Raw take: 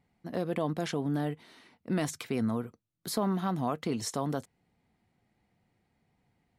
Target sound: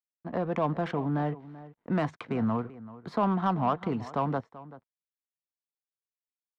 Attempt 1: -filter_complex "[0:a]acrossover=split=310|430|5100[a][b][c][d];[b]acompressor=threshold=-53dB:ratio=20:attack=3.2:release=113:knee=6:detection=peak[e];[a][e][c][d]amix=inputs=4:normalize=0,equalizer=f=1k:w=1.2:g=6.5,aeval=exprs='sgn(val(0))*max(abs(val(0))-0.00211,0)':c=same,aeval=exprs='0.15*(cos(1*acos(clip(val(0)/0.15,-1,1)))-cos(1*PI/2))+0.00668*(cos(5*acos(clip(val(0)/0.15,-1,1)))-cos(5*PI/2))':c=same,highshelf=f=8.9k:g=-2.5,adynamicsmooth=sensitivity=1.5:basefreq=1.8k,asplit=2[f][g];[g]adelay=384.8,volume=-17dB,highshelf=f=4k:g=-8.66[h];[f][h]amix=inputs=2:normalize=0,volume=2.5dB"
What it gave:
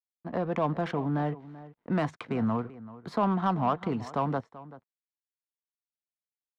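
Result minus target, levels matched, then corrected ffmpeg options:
8000 Hz band +3.5 dB
-filter_complex "[0:a]acrossover=split=310|430|5100[a][b][c][d];[b]acompressor=threshold=-53dB:ratio=20:attack=3.2:release=113:knee=6:detection=peak[e];[a][e][c][d]amix=inputs=4:normalize=0,equalizer=f=1k:w=1.2:g=6.5,aeval=exprs='sgn(val(0))*max(abs(val(0))-0.00211,0)':c=same,aeval=exprs='0.15*(cos(1*acos(clip(val(0)/0.15,-1,1)))-cos(1*PI/2))+0.00668*(cos(5*acos(clip(val(0)/0.15,-1,1)))-cos(5*PI/2))':c=same,highshelf=f=8.9k:g=-13,adynamicsmooth=sensitivity=1.5:basefreq=1.8k,asplit=2[f][g];[g]adelay=384.8,volume=-17dB,highshelf=f=4k:g=-8.66[h];[f][h]amix=inputs=2:normalize=0,volume=2.5dB"

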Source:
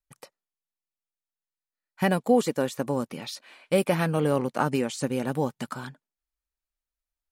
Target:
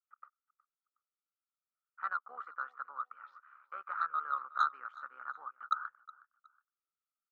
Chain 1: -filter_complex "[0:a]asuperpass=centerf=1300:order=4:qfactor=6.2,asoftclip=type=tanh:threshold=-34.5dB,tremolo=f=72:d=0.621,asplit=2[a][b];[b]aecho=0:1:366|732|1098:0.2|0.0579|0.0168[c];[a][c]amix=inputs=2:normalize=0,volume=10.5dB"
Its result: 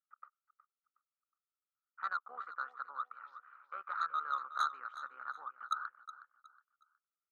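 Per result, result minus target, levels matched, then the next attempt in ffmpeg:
soft clip: distortion +7 dB; echo-to-direct +6.5 dB
-filter_complex "[0:a]asuperpass=centerf=1300:order=4:qfactor=6.2,asoftclip=type=tanh:threshold=-27.5dB,tremolo=f=72:d=0.621,asplit=2[a][b];[b]aecho=0:1:366|732|1098:0.2|0.0579|0.0168[c];[a][c]amix=inputs=2:normalize=0,volume=10.5dB"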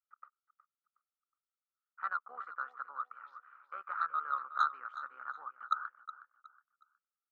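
echo-to-direct +6.5 dB
-filter_complex "[0:a]asuperpass=centerf=1300:order=4:qfactor=6.2,asoftclip=type=tanh:threshold=-27.5dB,tremolo=f=72:d=0.621,asplit=2[a][b];[b]aecho=0:1:366|732:0.0944|0.0274[c];[a][c]amix=inputs=2:normalize=0,volume=10.5dB"

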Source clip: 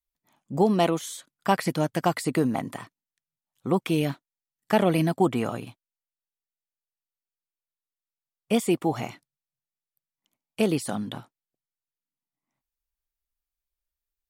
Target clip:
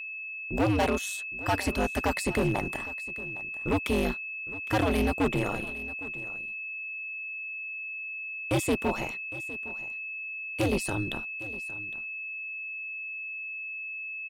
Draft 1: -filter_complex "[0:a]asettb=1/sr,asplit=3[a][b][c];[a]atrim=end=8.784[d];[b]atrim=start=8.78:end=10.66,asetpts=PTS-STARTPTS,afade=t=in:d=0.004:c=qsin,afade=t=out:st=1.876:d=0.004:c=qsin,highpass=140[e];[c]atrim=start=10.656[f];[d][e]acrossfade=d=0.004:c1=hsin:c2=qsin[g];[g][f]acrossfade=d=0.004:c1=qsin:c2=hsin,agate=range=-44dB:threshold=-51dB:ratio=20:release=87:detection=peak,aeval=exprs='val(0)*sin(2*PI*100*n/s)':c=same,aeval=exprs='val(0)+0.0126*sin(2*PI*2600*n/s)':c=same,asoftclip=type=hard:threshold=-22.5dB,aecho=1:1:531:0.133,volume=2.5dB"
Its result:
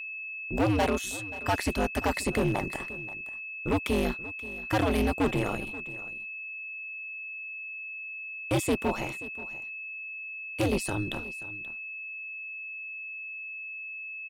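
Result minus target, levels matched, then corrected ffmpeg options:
echo 0.279 s early
-filter_complex "[0:a]asettb=1/sr,asplit=3[a][b][c];[a]atrim=end=8.784[d];[b]atrim=start=8.78:end=10.66,asetpts=PTS-STARTPTS,afade=t=in:d=0.004:c=qsin,afade=t=out:st=1.876:d=0.004:c=qsin,highpass=140[e];[c]atrim=start=10.656[f];[d][e]acrossfade=d=0.004:c1=hsin:c2=qsin[g];[g][f]acrossfade=d=0.004:c1=qsin:c2=hsin,agate=range=-44dB:threshold=-51dB:ratio=20:release=87:detection=peak,aeval=exprs='val(0)*sin(2*PI*100*n/s)':c=same,aeval=exprs='val(0)+0.0126*sin(2*PI*2600*n/s)':c=same,asoftclip=type=hard:threshold=-22.5dB,aecho=1:1:810:0.133,volume=2.5dB"

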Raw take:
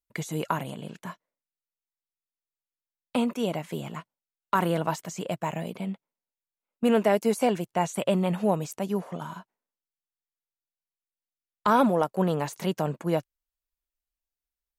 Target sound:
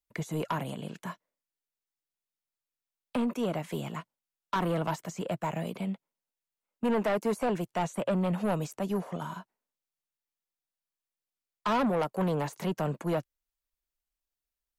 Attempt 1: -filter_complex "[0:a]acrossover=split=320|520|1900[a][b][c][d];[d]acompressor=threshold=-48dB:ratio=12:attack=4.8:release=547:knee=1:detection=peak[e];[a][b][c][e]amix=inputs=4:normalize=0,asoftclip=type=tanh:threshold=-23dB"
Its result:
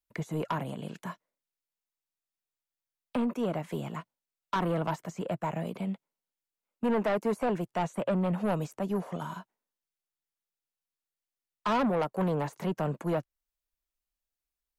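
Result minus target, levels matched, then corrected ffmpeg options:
compressor: peak gain reduction +6 dB
-filter_complex "[0:a]acrossover=split=320|520|1900[a][b][c][d];[d]acompressor=threshold=-41.5dB:ratio=12:attack=4.8:release=547:knee=1:detection=peak[e];[a][b][c][e]amix=inputs=4:normalize=0,asoftclip=type=tanh:threshold=-23dB"

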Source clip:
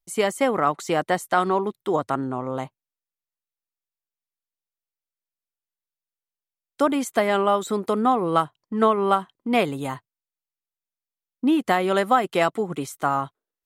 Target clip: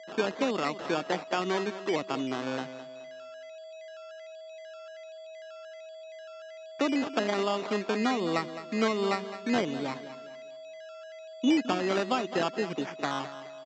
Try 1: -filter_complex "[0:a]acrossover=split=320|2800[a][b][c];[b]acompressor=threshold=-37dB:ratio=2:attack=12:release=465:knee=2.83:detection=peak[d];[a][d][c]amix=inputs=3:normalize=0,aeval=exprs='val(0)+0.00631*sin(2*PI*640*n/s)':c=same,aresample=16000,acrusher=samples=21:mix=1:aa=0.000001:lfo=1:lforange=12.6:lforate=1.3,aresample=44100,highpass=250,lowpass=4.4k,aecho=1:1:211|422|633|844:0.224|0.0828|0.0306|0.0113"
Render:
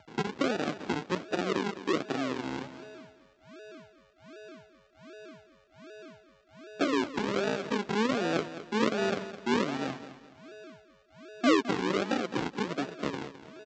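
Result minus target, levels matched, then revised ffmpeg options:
decimation with a swept rate: distortion +15 dB
-filter_complex "[0:a]acrossover=split=320|2800[a][b][c];[b]acompressor=threshold=-37dB:ratio=2:attack=12:release=465:knee=2.83:detection=peak[d];[a][d][c]amix=inputs=3:normalize=0,aeval=exprs='val(0)+0.00631*sin(2*PI*640*n/s)':c=same,aresample=16000,acrusher=samples=6:mix=1:aa=0.000001:lfo=1:lforange=3.6:lforate=1.3,aresample=44100,highpass=250,lowpass=4.4k,aecho=1:1:211|422|633|844:0.224|0.0828|0.0306|0.0113"

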